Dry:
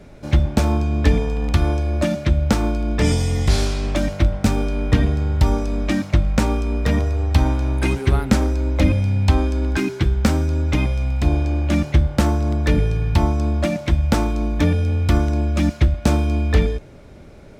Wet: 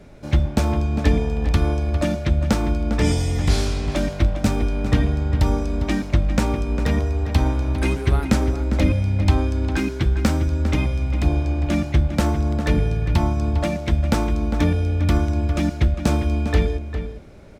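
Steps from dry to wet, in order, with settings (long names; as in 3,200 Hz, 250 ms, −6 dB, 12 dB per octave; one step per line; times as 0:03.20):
slap from a distant wall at 69 metres, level −9 dB
level −2 dB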